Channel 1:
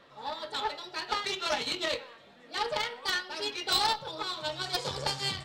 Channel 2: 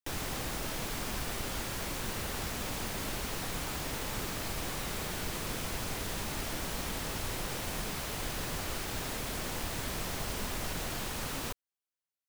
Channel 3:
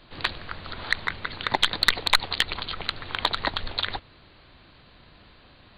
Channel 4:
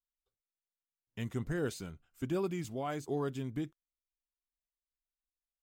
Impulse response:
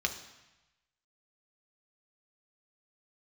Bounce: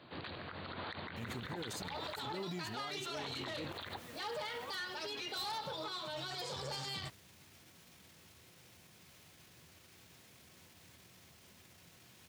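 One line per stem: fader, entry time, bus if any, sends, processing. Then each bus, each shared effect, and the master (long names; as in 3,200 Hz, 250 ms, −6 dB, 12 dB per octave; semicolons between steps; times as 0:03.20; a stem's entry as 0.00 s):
+1.5 dB, 1.65 s, no send, soft clipping −24.5 dBFS, distortion −11 dB
−17.0 dB, 1.10 s, send −9.5 dB, brickwall limiter −36 dBFS, peak gain reduction 12.5 dB
−2.0 dB, 0.00 s, muted 0:02.33–0:03.15, no send, high-pass filter 350 Hz 6 dB per octave; spectral tilt −2.5 dB per octave
−3.5 dB, 0.00 s, no send, level that may fall only so fast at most 25 dB per second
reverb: on, RT60 1.0 s, pre-delay 3 ms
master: high-pass filter 76 Hz 24 dB per octave; brickwall limiter −33.5 dBFS, peak gain reduction 25.5 dB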